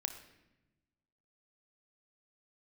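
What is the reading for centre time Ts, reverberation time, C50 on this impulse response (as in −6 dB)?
15 ms, 1.0 s, 9.5 dB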